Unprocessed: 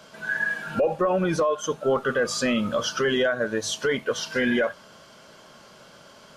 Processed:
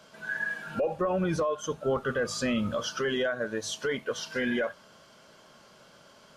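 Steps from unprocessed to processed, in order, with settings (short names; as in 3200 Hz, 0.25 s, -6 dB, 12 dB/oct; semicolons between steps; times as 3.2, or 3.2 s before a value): 0.96–2.75 bell 67 Hz +13 dB 1.7 oct; gain -6 dB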